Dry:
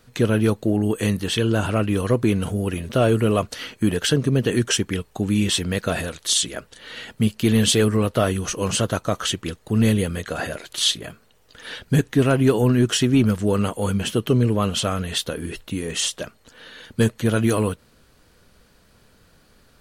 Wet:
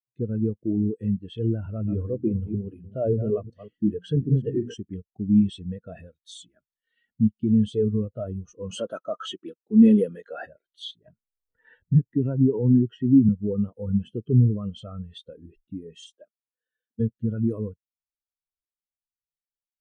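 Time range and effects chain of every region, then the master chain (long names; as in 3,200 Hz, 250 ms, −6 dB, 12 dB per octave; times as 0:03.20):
0:01.66–0:04.74: delay that plays each chunk backwards 184 ms, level −6.5 dB + mains-hum notches 60/120/180/240/300 Hz
0:06.29–0:07.14: one scale factor per block 7 bits + dynamic equaliser 510 Hz, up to −8 dB, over −48 dBFS, Q 1.9
0:08.71–0:10.46: Bessel high-pass filter 320 Hz + transient designer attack −5 dB, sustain +1 dB + leveller curve on the samples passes 2
0:11.06–0:13.29: high-shelf EQ 4,500 Hz −9 dB + hollow resonant body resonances 930/1,900/2,700 Hz, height 8 dB, ringing for 40 ms + multiband upward and downward compressor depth 40%
0:16.16–0:17.00: high-pass filter 230 Hz + high-shelf EQ 3,800 Hz −5 dB
whole clip: automatic gain control gain up to 4 dB; brickwall limiter −8.5 dBFS; every bin expanded away from the loudest bin 2.5 to 1; level +2 dB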